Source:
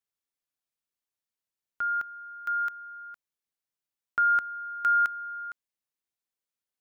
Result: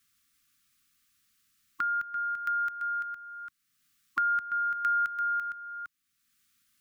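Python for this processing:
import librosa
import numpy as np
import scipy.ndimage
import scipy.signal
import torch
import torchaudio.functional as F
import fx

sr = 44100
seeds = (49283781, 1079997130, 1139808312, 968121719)

p1 = fx.brickwall_bandstop(x, sr, low_hz=310.0, high_hz=1100.0)
p2 = p1 + fx.echo_single(p1, sr, ms=339, db=-8.5, dry=0)
p3 = fx.band_squash(p2, sr, depth_pct=70)
y = p3 * 10.0 ** (-1.5 / 20.0)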